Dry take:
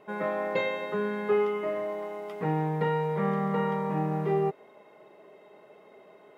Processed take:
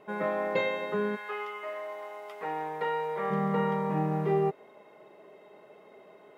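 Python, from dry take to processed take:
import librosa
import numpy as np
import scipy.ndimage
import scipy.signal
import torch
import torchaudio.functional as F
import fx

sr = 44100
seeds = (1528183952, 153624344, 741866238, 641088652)

y = fx.highpass(x, sr, hz=fx.line((1.15, 1100.0), (3.3, 430.0)), slope=12, at=(1.15, 3.3), fade=0.02)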